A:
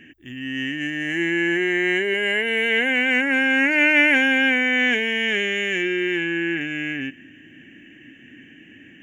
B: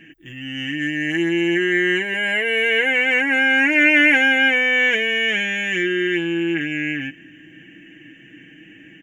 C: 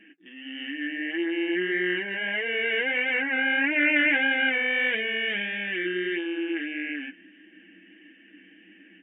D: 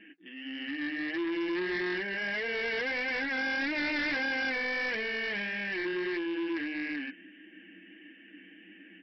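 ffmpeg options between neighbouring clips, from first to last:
ffmpeg -i in.wav -af "aecho=1:1:6.2:0.72" out.wav
ffmpeg -i in.wav -af "flanger=delay=4.8:depth=7.6:regen=-44:speed=1.6:shape=triangular,afftfilt=real='re*between(b*sr/4096,180,3800)':imag='im*between(b*sr/4096,180,3800)':win_size=4096:overlap=0.75,volume=-4dB" out.wav
ffmpeg -i in.wav -filter_complex "[0:a]acrossover=split=2500[link_01][link_02];[link_02]acompressor=threshold=-45dB:ratio=4:attack=1:release=60[link_03];[link_01][link_03]amix=inputs=2:normalize=0,aresample=11025,asoftclip=type=tanh:threshold=-28.5dB,aresample=44100" out.wav

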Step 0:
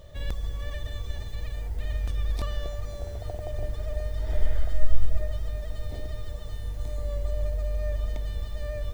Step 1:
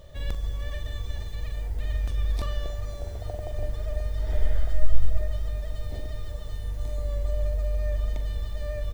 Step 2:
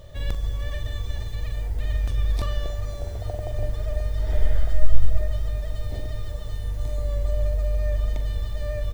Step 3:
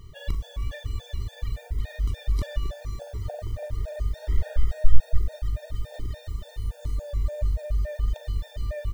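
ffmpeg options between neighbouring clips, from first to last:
ffmpeg -i in.wav -filter_complex "[0:a]asplit=2[link_01][link_02];[link_02]adelay=42,volume=-11dB[link_03];[link_01][link_03]amix=inputs=2:normalize=0" out.wav
ffmpeg -i in.wav -af "equalizer=frequency=110:width=8:gain=8,volume=3dB" out.wav
ffmpeg -i in.wav -af "afftfilt=real='re*gt(sin(2*PI*3.5*pts/sr)*(1-2*mod(floor(b*sr/1024/470),2)),0)':imag='im*gt(sin(2*PI*3.5*pts/sr)*(1-2*mod(floor(b*sr/1024/470),2)),0)':win_size=1024:overlap=0.75" out.wav

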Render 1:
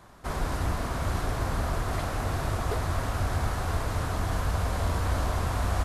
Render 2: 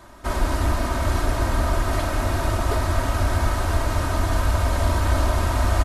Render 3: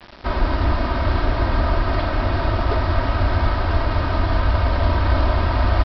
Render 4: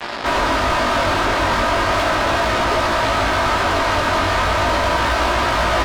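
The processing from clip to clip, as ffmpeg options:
ffmpeg -i in.wav -af "aecho=1:1:3.2:0.58,volume=5.5dB" out.wav
ffmpeg -i in.wav -af "adynamicsmooth=sensitivity=6:basefreq=3100,aresample=11025,acrusher=bits=6:mix=0:aa=0.000001,aresample=44100,volume=2.5dB" out.wav
ffmpeg -i in.wav -filter_complex "[0:a]asplit=2[link_01][link_02];[link_02]highpass=frequency=720:poles=1,volume=35dB,asoftclip=type=tanh:threshold=-5.5dB[link_03];[link_01][link_03]amix=inputs=2:normalize=0,lowpass=frequency=3800:poles=1,volume=-6dB,flanger=delay=17:depth=4.6:speed=0.37,volume=-2.5dB" out.wav

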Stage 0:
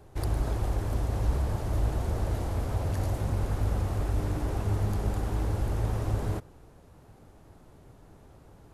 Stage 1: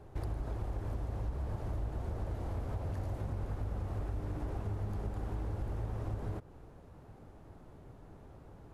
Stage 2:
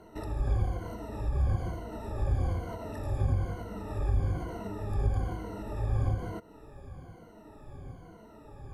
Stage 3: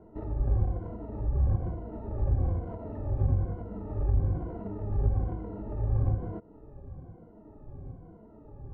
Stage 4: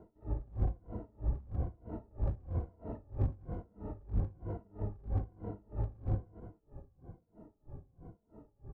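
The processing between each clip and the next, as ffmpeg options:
ffmpeg -i in.wav -af "highshelf=frequency=3400:gain=-10.5,acompressor=threshold=-35dB:ratio=4" out.wav
ffmpeg -i in.wav -af "afftfilt=real='re*pow(10,21/40*sin(2*PI*(1.9*log(max(b,1)*sr/1024/100)/log(2)-(-1.1)*(pts-256)/sr)))':imag='im*pow(10,21/40*sin(2*PI*(1.9*log(max(b,1)*sr/1024/100)/log(2)-(-1.1)*(pts-256)/sr)))':win_size=1024:overlap=0.75,volume=1.5dB" out.wav
ffmpeg -i in.wav -af "adynamicsmooth=sensitivity=0.5:basefreq=740,volume=2dB" out.wav
ffmpeg -i in.wav -filter_complex "[0:a]asoftclip=type=hard:threshold=-23dB,asplit=2[link_01][link_02];[link_02]aecho=0:1:199:0.316[link_03];[link_01][link_03]amix=inputs=2:normalize=0,aeval=exprs='val(0)*pow(10,-28*(0.5-0.5*cos(2*PI*3.1*n/s))/20)':channel_layout=same,volume=-1dB" out.wav

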